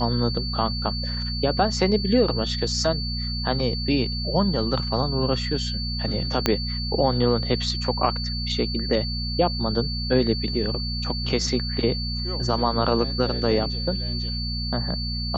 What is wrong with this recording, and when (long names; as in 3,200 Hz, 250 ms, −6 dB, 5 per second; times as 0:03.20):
mains hum 60 Hz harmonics 4 −29 dBFS
whistle 4,500 Hz −30 dBFS
0:06.46: click −4 dBFS